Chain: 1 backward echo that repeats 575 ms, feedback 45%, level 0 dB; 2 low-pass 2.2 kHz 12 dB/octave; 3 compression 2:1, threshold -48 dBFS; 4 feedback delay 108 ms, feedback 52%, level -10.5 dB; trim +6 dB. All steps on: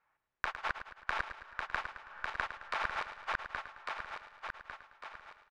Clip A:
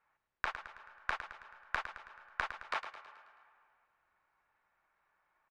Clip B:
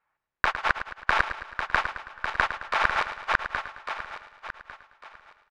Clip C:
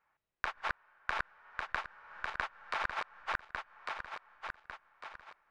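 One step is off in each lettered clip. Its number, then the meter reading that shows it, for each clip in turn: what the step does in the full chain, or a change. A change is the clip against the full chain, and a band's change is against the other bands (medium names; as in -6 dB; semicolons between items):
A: 1, 250 Hz band -2.0 dB; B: 3, mean gain reduction 8.0 dB; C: 4, echo-to-direct -9.0 dB to none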